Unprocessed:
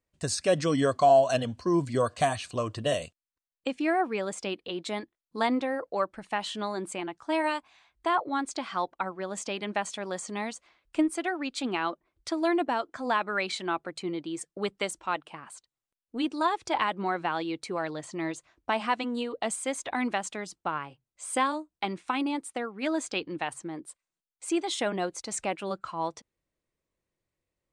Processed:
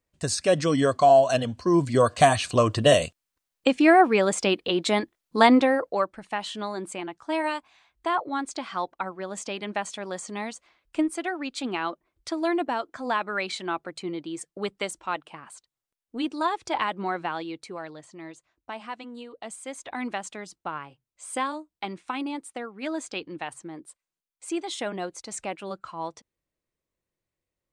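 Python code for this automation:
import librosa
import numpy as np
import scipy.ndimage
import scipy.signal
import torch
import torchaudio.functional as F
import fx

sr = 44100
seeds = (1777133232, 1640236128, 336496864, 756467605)

y = fx.gain(x, sr, db=fx.line((1.55, 3.0), (2.52, 10.0), (5.64, 10.0), (6.16, 0.5), (17.17, 0.5), (18.19, -9.0), (19.37, -9.0), (20.09, -2.0)))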